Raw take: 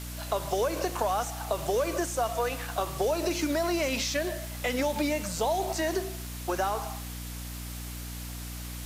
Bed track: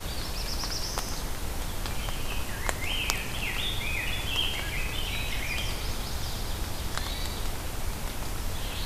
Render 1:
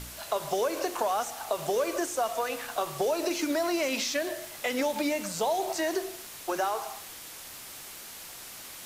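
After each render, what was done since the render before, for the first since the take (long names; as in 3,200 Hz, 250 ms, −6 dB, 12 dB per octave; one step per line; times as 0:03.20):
hum removal 60 Hz, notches 8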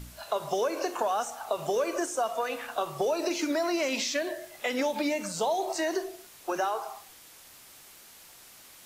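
noise reduction from a noise print 8 dB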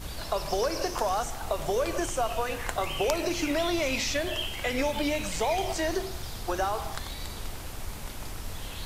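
mix in bed track −5 dB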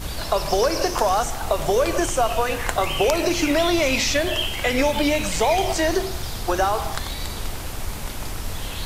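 level +8 dB
brickwall limiter −2 dBFS, peak gain reduction 2.5 dB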